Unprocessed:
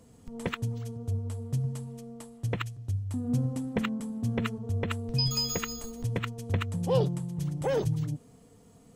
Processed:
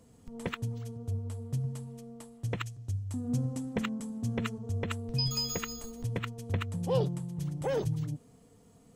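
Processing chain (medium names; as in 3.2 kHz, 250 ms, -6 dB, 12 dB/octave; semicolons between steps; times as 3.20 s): 2.46–4.95 s: peaking EQ 6.7 kHz +5.5 dB 0.95 oct; trim -3 dB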